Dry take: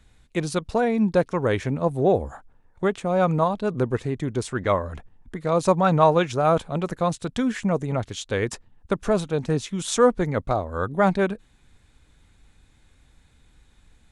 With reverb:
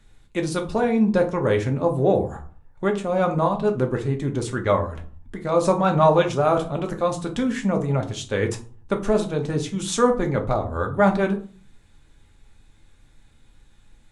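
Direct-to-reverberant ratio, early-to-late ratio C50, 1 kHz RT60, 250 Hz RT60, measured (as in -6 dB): 3.0 dB, 13.0 dB, 0.40 s, 0.55 s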